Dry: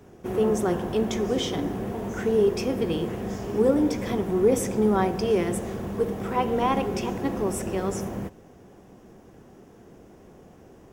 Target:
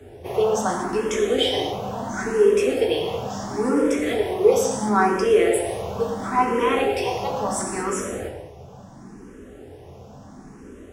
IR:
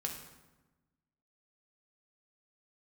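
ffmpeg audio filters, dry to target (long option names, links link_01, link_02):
-filter_complex "[0:a]acrossover=split=360[link_01][link_02];[link_01]acompressor=threshold=-43dB:ratio=4[link_03];[link_03][link_02]amix=inputs=2:normalize=0[link_04];[1:a]atrim=start_sample=2205,afade=type=out:start_time=0.18:duration=0.01,atrim=end_sample=8379,asetrate=23373,aresample=44100[link_05];[link_04][link_05]afir=irnorm=-1:irlink=0,asplit=2[link_06][link_07];[link_07]afreqshift=0.73[link_08];[link_06][link_08]amix=inputs=2:normalize=1,volume=5.5dB"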